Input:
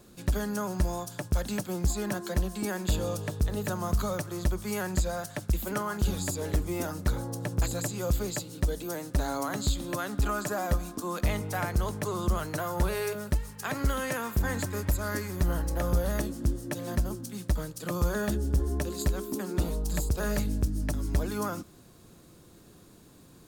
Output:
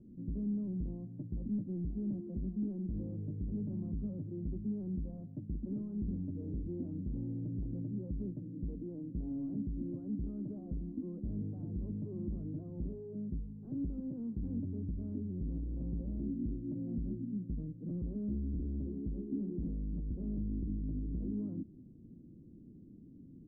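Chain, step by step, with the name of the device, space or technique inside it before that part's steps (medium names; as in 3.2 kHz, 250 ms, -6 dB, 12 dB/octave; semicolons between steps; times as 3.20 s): overdriven synthesiser ladder filter (saturation -33 dBFS, distortion -6 dB; four-pole ladder low-pass 300 Hz, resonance 50%); trim +7 dB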